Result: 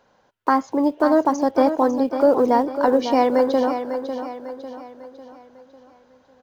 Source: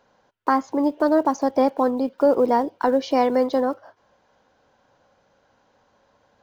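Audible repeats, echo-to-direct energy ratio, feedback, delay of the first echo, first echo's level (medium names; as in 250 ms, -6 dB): 4, -8.0 dB, 45%, 549 ms, -9.0 dB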